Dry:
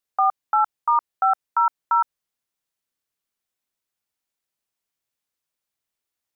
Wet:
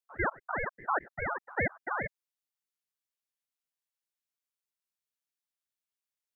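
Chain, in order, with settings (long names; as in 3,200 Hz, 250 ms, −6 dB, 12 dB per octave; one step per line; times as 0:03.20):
spectrum averaged block by block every 100 ms
high-pass filter 1,100 Hz 6 dB per octave
ring modulator whose carrier an LFO sweeps 470 Hz, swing 85%, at 4.9 Hz
level −4.5 dB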